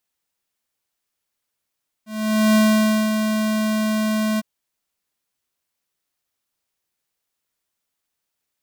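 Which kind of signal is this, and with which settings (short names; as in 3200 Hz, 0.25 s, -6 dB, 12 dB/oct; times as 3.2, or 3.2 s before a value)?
ADSR square 216 Hz, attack 0.487 s, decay 0.547 s, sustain -6.5 dB, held 2.33 s, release 27 ms -14 dBFS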